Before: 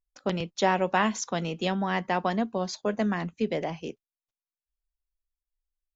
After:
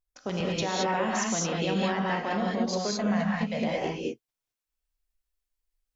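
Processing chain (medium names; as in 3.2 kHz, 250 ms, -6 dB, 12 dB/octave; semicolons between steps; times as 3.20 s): 2.92–3.62 s: Chebyshev band-stop 230–560 Hz, order 2; peak limiter -22.5 dBFS, peak gain reduction 12 dB; gated-style reverb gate 240 ms rising, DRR -4 dB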